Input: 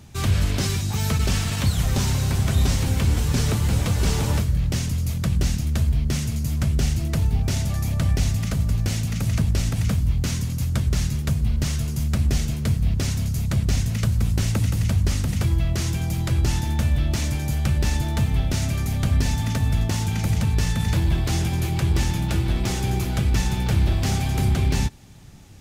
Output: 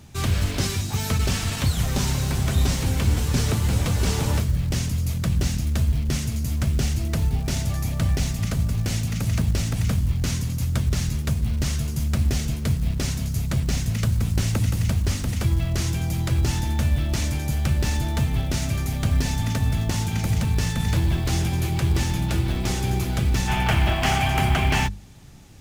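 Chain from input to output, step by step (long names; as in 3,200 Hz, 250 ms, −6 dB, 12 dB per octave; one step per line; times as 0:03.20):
gain on a spectral selection 0:23.48–0:24.87, 600–3,400 Hz +10 dB
floating-point word with a short mantissa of 4 bits
mains-hum notches 50/100/150/200 Hz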